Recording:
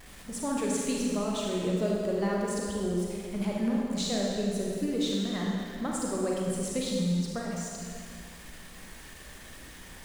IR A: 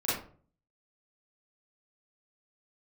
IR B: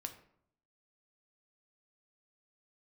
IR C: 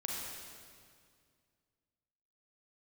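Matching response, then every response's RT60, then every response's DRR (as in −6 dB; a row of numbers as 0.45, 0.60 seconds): C; 0.45, 0.70, 2.1 seconds; −11.0, 5.5, −3.0 decibels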